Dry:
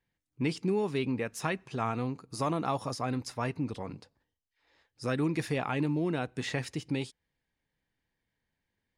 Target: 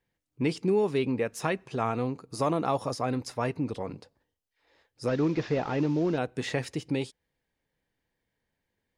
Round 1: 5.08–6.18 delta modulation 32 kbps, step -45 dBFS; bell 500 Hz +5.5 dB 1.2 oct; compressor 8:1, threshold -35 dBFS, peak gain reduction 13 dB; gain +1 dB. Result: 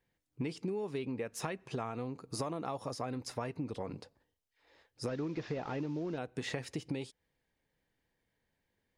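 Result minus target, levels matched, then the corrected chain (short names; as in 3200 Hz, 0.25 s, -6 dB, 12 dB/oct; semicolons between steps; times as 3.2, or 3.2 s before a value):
compressor: peak gain reduction +13 dB
5.08–6.18 delta modulation 32 kbps, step -45 dBFS; bell 500 Hz +5.5 dB 1.2 oct; gain +1 dB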